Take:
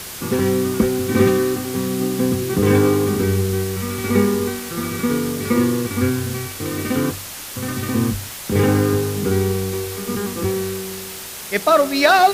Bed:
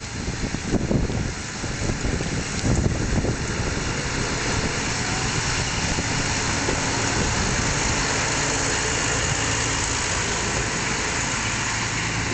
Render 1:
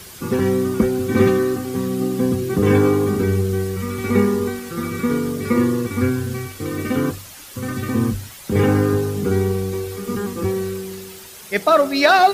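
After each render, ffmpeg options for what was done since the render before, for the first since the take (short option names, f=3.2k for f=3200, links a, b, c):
-af "afftdn=nr=9:nf=-33"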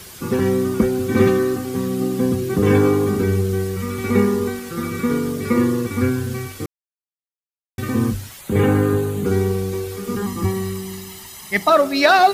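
-filter_complex "[0:a]asettb=1/sr,asplit=3[a][b][c];[a]atrim=end=8.414[d];[b]atrim=start=8.41:end=9.26,asetpts=PTS-STARTPTS,afade=t=in:d=0.004:c=qsin,afade=t=out:st=0.846:d=0.004:c=qsin,equalizer=f=5.3k:t=o:w=0.29:g=-14.5[e];[c]atrim=start=9.256[f];[d][e]acrossfade=d=0.004:c1=hsin:c2=qsin[g];[g][f]acrossfade=d=0.004:c1=qsin:c2=hsin,asettb=1/sr,asplit=3[h][i][j];[h]atrim=end=10.224[k];[i]atrim=start=10.22:end=11.7,asetpts=PTS-STARTPTS,afade=t=in:d=0.004:c=qsin,afade=t=out:st=1.476:d=0.004:c=qsin,aecho=1:1:1:0.69,atrim=end_sample=65268[l];[j]atrim=start=11.696[m];[k][l]acrossfade=d=0.004:c1=hsin:c2=qsin[n];[n][m]acrossfade=d=0.004:c1=qsin:c2=hsin,asplit=3[o][p][q];[o]atrim=end=6.66,asetpts=PTS-STARTPTS,afade=t=out:st=6.656:d=0.004:c=hsin[r];[p]atrim=start=6.66:end=7.78,asetpts=PTS-STARTPTS,volume=0[s];[q]atrim=start=7.78,asetpts=PTS-STARTPTS,afade=t=in:d=0.004:c=hsin[t];[r][s][t]concat=n=3:v=0:a=1"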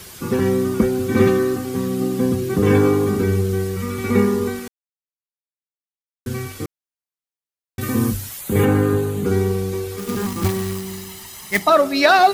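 -filter_complex "[0:a]asettb=1/sr,asplit=3[a][b][c];[a]atrim=end=7.814[d];[b]atrim=start=7.81:end=8.65,asetpts=PTS-STARTPTS,afade=t=in:d=0.004:c=qsin,afade=t=out:st=0.836:d=0.004:c=qsin,highshelf=f=7.5k:g=11[e];[c]atrim=start=8.646[f];[d][e]acrossfade=d=0.004:c1=hsin:c2=qsin[g];[g][f]acrossfade=d=0.004:c1=qsin:c2=hsin,asettb=1/sr,asplit=3[h][i][j];[h]atrim=end=9.984[k];[i]atrim=start=9.98:end=11.62,asetpts=PTS-STARTPTS,afade=t=in:d=0.004:c=qsin,afade=t=out:st=1.636:d=0.004:c=qsin,acrusher=bits=2:mode=log:mix=0:aa=0.000001[l];[j]atrim=start=11.616[m];[k][l]acrossfade=d=0.004:c1=hsin:c2=qsin[n];[n][m]acrossfade=d=0.004:c1=qsin:c2=hsin,asplit=3[o][p][q];[o]atrim=end=4.68,asetpts=PTS-STARTPTS,afade=t=out:st=4.676:d=0.004:c=hsin[r];[p]atrim=start=4.68:end=6.26,asetpts=PTS-STARTPTS,volume=0[s];[q]atrim=start=6.26,asetpts=PTS-STARTPTS,afade=t=in:d=0.004:c=hsin[t];[r][s][t]concat=n=3:v=0:a=1"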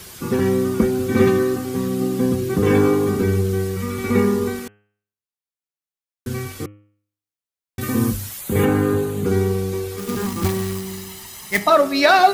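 -af "bandreject=f=103:t=h:w=4,bandreject=f=206:t=h:w=4,bandreject=f=309:t=h:w=4,bandreject=f=412:t=h:w=4,bandreject=f=515:t=h:w=4,bandreject=f=618:t=h:w=4,bandreject=f=721:t=h:w=4,bandreject=f=824:t=h:w=4,bandreject=f=927:t=h:w=4,bandreject=f=1.03k:t=h:w=4,bandreject=f=1.133k:t=h:w=4,bandreject=f=1.236k:t=h:w=4,bandreject=f=1.339k:t=h:w=4,bandreject=f=1.442k:t=h:w=4,bandreject=f=1.545k:t=h:w=4,bandreject=f=1.648k:t=h:w=4,bandreject=f=1.751k:t=h:w=4,bandreject=f=1.854k:t=h:w=4,bandreject=f=1.957k:t=h:w=4,bandreject=f=2.06k:t=h:w=4,bandreject=f=2.163k:t=h:w=4,bandreject=f=2.266k:t=h:w=4,bandreject=f=2.369k:t=h:w=4,bandreject=f=2.472k:t=h:w=4,bandreject=f=2.575k:t=h:w=4,bandreject=f=2.678k:t=h:w=4,bandreject=f=2.781k:t=h:w=4,bandreject=f=2.884k:t=h:w=4,bandreject=f=2.987k:t=h:w=4,bandreject=f=3.09k:t=h:w=4,bandreject=f=3.193k:t=h:w=4"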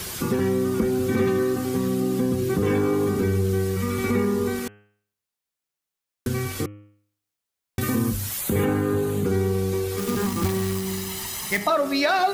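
-filter_complex "[0:a]asplit=2[a][b];[b]alimiter=limit=-13.5dB:level=0:latency=1,volume=1dB[c];[a][c]amix=inputs=2:normalize=0,acompressor=threshold=-27dB:ratio=2"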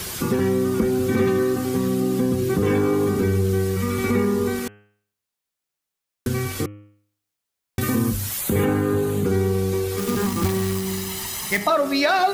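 -af "volume=2dB"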